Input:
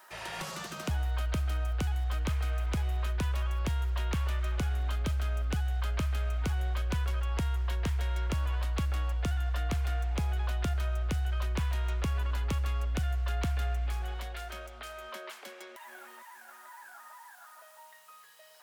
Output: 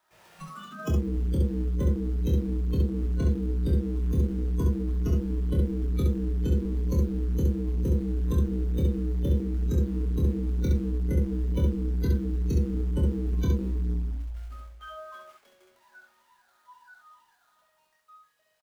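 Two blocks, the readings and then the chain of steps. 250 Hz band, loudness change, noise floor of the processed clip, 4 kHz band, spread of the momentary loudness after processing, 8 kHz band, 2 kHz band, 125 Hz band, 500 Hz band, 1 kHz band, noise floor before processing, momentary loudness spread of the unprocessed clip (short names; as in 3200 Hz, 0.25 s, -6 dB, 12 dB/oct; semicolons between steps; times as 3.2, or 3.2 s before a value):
+12.5 dB, +5.0 dB, -68 dBFS, -8.5 dB, 10 LU, -5.5 dB, -9.5 dB, +5.0 dB, +8.0 dB, -7.5 dB, -54 dBFS, 16 LU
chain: half-waves squared off; spectral noise reduction 22 dB; early reflections 25 ms -4.5 dB, 67 ms -3.5 dB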